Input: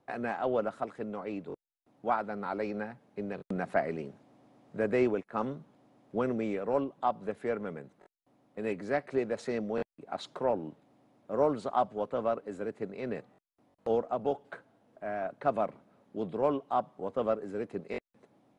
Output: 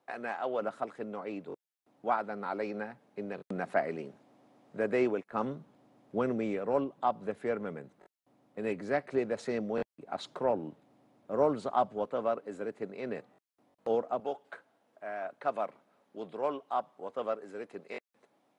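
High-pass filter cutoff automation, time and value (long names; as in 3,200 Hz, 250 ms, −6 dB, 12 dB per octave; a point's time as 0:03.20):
high-pass filter 6 dB per octave
600 Hz
from 0:00.61 220 Hz
from 0:05.32 57 Hz
from 0:12.05 210 Hz
from 0:14.20 700 Hz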